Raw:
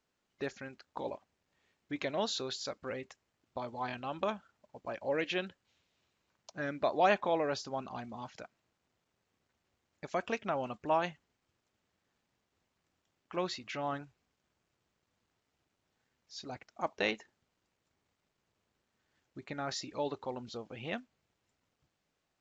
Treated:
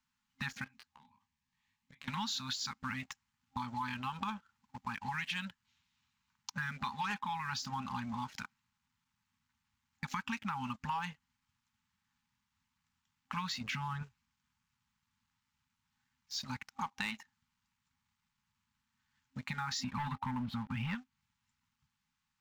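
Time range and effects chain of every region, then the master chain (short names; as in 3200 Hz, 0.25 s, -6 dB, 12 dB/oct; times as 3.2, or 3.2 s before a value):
0.64–2.08 notch 1400 Hz, Q 5.6 + compressor, threshold -51 dBFS + detuned doubles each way 32 cents
13.61–14.03 low shelf 400 Hz +9.5 dB + compressor 2.5:1, threshold -36 dBFS
19.84–20.95 sample leveller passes 3 + air absorption 460 m
whole clip: FFT band-reject 260–800 Hz; sample leveller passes 2; compressor 6:1, threshold -38 dBFS; gain +2.5 dB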